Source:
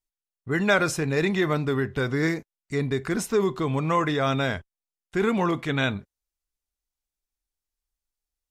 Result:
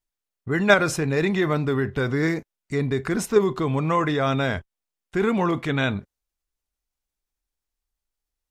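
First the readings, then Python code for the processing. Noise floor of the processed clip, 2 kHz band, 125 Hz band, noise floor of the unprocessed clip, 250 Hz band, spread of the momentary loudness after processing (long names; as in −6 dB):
below −85 dBFS, +2.0 dB, +2.0 dB, below −85 dBFS, +2.0 dB, 10 LU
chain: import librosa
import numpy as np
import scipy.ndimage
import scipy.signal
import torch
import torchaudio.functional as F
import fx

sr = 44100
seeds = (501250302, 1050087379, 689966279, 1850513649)

p1 = fx.high_shelf(x, sr, hz=2800.0, db=-4.0)
p2 = fx.level_steps(p1, sr, step_db=19)
y = p1 + F.gain(torch.from_numpy(p2), 2.0).numpy()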